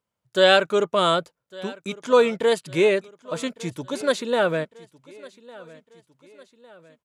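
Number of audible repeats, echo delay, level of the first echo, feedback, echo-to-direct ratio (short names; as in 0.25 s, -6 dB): 3, 1.155 s, -21.5 dB, 49%, -20.5 dB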